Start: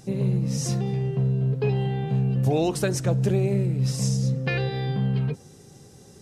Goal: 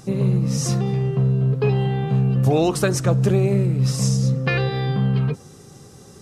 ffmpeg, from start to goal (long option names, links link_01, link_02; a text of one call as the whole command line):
ffmpeg -i in.wav -af "equalizer=frequency=1200:width=3.8:gain=8.5,volume=4.5dB" out.wav